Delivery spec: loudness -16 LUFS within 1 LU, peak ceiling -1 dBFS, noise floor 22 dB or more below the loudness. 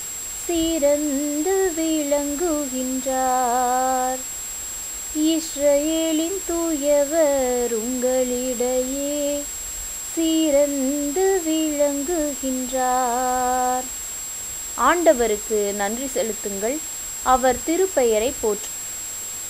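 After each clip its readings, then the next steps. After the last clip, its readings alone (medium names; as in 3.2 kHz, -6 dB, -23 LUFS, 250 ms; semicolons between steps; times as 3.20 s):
steady tone 7.6 kHz; tone level -29 dBFS; noise floor -31 dBFS; noise floor target -44 dBFS; loudness -21.5 LUFS; peak level -4.0 dBFS; loudness target -16.0 LUFS
-> band-stop 7.6 kHz, Q 30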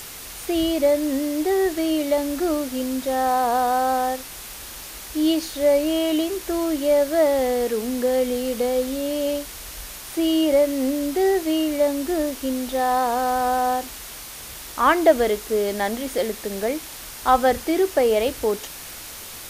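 steady tone not found; noise floor -37 dBFS; noise floor target -44 dBFS
-> noise print and reduce 7 dB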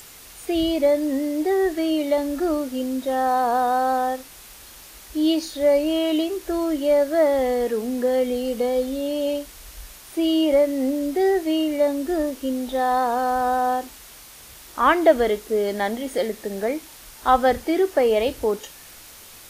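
noise floor -44 dBFS; loudness -22.0 LUFS; peak level -4.0 dBFS; loudness target -16.0 LUFS
-> trim +6 dB; peak limiter -1 dBFS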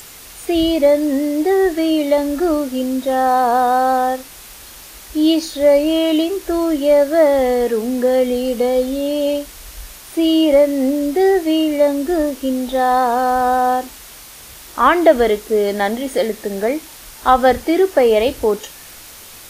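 loudness -16.0 LUFS; peak level -1.0 dBFS; noise floor -38 dBFS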